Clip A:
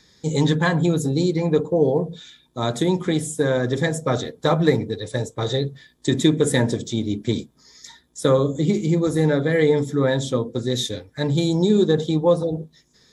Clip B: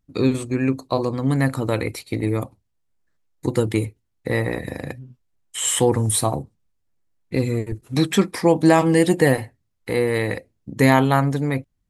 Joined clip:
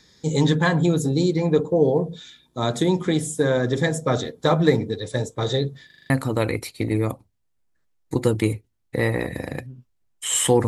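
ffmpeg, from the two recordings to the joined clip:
-filter_complex "[0:a]apad=whole_dur=10.67,atrim=end=10.67,asplit=6[a][b][c][d][e][f];[a]atrim=end=5.902[g];[b]atrim=start=5.858:end=5.902[h];[c]atrim=start=5.858:end=5.902[i];[d]atrim=start=5.858:end=5.902[j];[e]atrim=start=5.858:end=5.902[k];[f]atrim=start=5.858:end=5.902[l];[1:a]atrim=start=1.418:end=5.99[m];[g][h]acrossfade=d=0.004:c1=hsin:c2=hsin[n];[n][i]acrossfade=d=0.004:c1=hsin:c2=hsin[o];[o][j]acrossfade=d=0.004:c1=hsin:c2=hsin[p];[p][k]acrossfade=d=0.004:c1=hsin:c2=hsin[q];[q][l]acrossfade=d=0.004:c1=hsin:c2=hsin[r];[r][m]acrossfade=d=0.004:c1=hsin:c2=hsin"

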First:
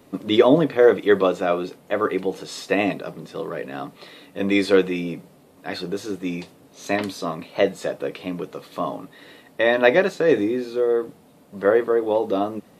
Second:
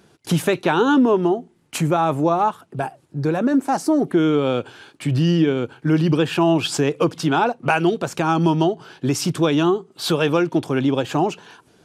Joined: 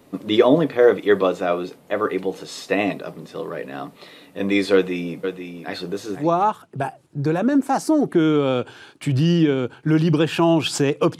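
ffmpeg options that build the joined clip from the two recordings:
-filter_complex "[0:a]asplit=3[a][b][c];[a]afade=t=out:st=5.23:d=0.02[d];[b]aecho=1:1:493:0.398,afade=t=in:st=5.23:d=0.02,afade=t=out:st=6.29:d=0.02[e];[c]afade=t=in:st=6.29:d=0.02[f];[d][e][f]amix=inputs=3:normalize=0,apad=whole_dur=11.19,atrim=end=11.19,atrim=end=6.29,asetpts=PTS-STARTPTS[g];[1:a]atrim=start=2.14:end=7.18,asetpts=PTS-STARTPTS[h];[g][h]acrossfade=d=0.14:c1=tri:c2=tri"

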